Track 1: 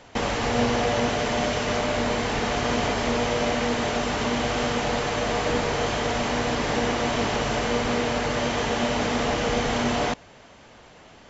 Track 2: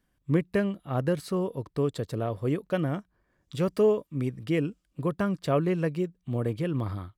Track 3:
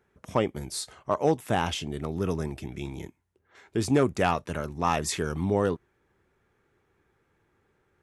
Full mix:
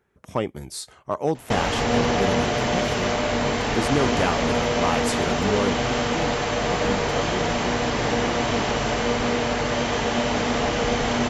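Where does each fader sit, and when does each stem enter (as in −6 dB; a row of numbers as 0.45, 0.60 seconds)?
+1.5, −6.0, 0.0 decibels; 1.35, 1.65, 0.00 seconds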